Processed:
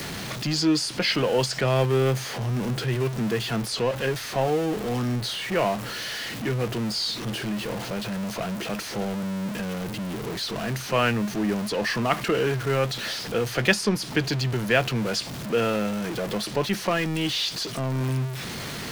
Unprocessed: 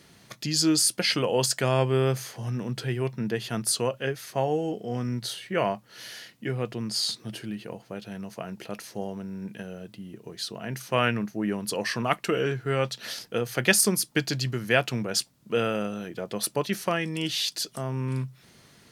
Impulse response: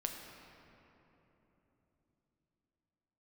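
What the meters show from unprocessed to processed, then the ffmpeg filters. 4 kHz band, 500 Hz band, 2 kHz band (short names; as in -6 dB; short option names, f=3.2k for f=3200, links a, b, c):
+2.0 dB, +2.5 dB, +2.5 dB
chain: -filter_complex "[0:a]aeval=exprs='val(0)+0.5*0.0447*sgn(val(0))':c=same,acrossover=split=170|1100|5400[a][b][c][d];[d]acompressor=threshold=-42dB:ratio=6[e];[a][b][c][e]amix=inputs=4:normalize=0"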